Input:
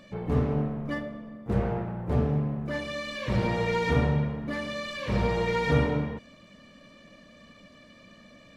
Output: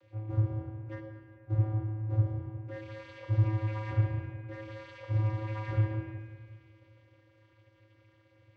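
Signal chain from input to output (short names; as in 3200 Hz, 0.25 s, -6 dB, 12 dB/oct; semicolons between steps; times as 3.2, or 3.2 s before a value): vocoder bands 16, square 108 Hz; on a send: reverb RT60 2.4 s, pre-delay 5 ms, DRR 8.5 dB; on the sum: gain -2 dB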